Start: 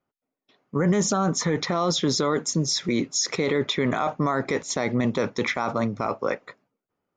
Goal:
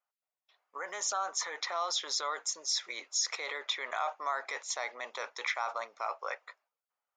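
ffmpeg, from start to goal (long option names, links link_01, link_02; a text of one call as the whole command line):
ffmpeg -i in.wav -af "highpass=frequency=700:width=0.5412,highpass=frequency=700:width=1.3066,volume=-6dB" out.wav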